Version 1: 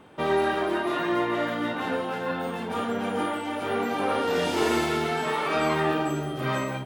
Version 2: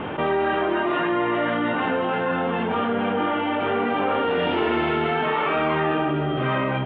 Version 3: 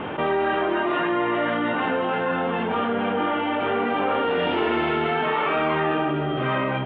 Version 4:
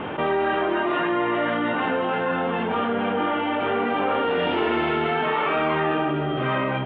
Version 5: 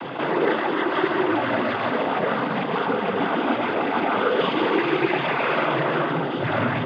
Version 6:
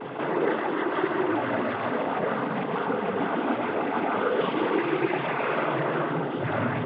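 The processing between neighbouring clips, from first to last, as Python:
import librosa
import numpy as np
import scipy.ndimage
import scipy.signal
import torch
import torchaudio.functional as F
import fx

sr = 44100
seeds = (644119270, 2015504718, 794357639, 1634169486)

y1 = scipy.signal.sosfilt(scipy.signal.ellip(4, 1.0, 70, 3100.0, 'lowpass', fs=sr, output='sos'), x)
y1 = fx.env_flatten(y1, sr, amount_pct=70)
y1 = y1 * librosa.db_to_amplitude(1.0)
y2 = fx.low_shelf(y1, sr, hz=160.0, db=-4.0)
y3 = y2
y4 = y3 + 10.0 ** (-4.5 / 20.0) * np.pad(y3, (int(152 * sr / 1000.0), 0))[:len(y3)]
y4 = fx.noise_vocoder(y4, sr, seeds[0], bands=16)
y5 = y4 + 10.0 ** (-36.0 / 20.0) * np.sin(2.0 * np.pi * 430.0 * np.arange(len(y4)) / sr)
y5 = fx.air_absorb(y5, sr, metres=300.0)
y5 = y5 * librosa.db_to_amplitude(-3.0)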